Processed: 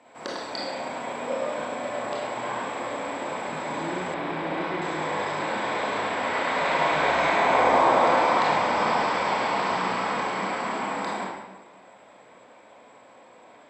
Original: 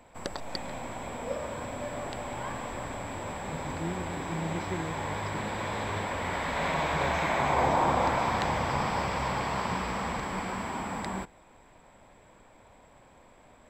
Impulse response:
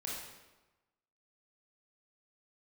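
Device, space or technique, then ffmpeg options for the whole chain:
supermarket ceiling speaker: -filter_complex "[0:a]highpass=280,lowpass=6.4k[a];[1:a]atrim=start_sample=2205[b];[a][b]afir=irnorm=-1:irlink=0,asettb=1/sr,asplit=3[c][d][e];[c]atrim=end=4.144[f];[d]atrim=start=4.14:end=4.82,asetpts=PTS-STARTPTS,afade=t=in:d=0.004:c=qsin,afade=t=out:st=0.676:d=0.004:c=qsin,lowpass=3.9k[g];[e]atrim=start=4.816[h];[f][g]acrossfade=d=0.004:c1=hsin:c2=qsin[i];[i][h]acrossfade=d=0.004:c1=qsin:c2=hsin,volume=6dB"

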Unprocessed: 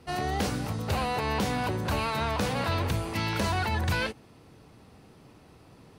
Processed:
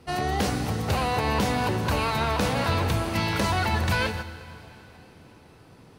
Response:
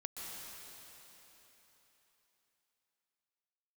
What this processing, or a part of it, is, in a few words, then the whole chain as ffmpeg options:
keyed gated reverb: -filter_complex "[0:a]asplit=3[a][b][c];[1:a]atrim=start_sample=2205[d];[b][d]afir=irnorm=-1:irlink=0[e];[c]apad=whole_len=263905[f];[e][f]sidechaingate=range=-7dB:threshold=-45dB:ratio=16:detection=peak,volume=-2dB[g];[a][g]amix=inputs=2:normalize=0"

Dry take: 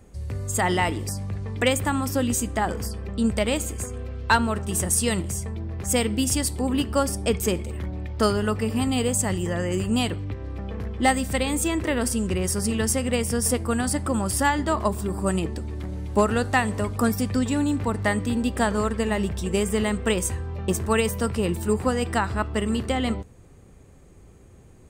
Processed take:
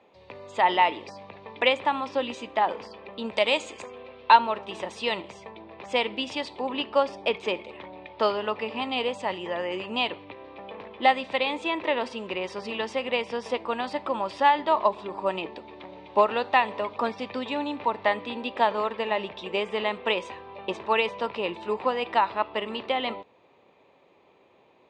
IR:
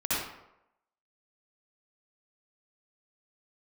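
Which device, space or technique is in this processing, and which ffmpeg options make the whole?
phone earpiece: -filter_complex "[0:a]highpass=420,equalizer=f=590:t=q:w=4:g=5,equalizer=f=940:t=q:w=4:g=10,equalizer=f=1.5k:t=q:w=4:g=-6,equalizer=f=2.5k:t=q:w=4:g=7,equalizer=f=3.7k:t=q:w=4:g=7,lowpass=f=3.9k:w=0.5412,lowpass=f=3.9k:w=1.3066,asettb=1/sr,asplit=3[a][b][c];[a]atrim=end=3.334[d];[b]atrim=start=3.33:end=3.82,asetpts=PTS-STARTPTS,afade=t=in:d=0.004:c=qsin,afade=t=out:st=0.486:d=0.004:c=qsin,equalizer=f=7.7k:t=o:w=1.3:g=14.5[e];[c]atrim=start=3.816[f];[d][e]acrossfade=d=0.004:c1=hsin:c2=qsin[g];[g][f]acrossfade=d=0.004:c1=qsin:c2=hsin,volume=-2dB"

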